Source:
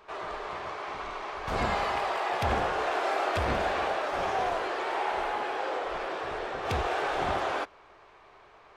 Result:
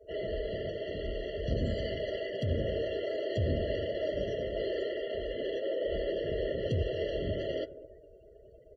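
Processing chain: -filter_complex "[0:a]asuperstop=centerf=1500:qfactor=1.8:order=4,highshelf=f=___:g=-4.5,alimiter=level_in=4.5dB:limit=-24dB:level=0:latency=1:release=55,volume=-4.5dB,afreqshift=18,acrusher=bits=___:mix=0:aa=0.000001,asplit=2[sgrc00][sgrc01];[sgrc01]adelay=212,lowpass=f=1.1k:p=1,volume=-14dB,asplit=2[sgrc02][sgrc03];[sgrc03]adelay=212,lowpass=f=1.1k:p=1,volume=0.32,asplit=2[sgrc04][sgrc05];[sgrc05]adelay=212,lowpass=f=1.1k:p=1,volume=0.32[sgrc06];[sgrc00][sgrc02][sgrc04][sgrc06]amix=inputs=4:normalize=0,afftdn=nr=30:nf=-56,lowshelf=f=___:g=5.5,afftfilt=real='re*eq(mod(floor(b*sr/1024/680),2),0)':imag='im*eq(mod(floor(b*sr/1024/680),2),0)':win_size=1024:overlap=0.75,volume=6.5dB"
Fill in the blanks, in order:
2.6k, 9, 160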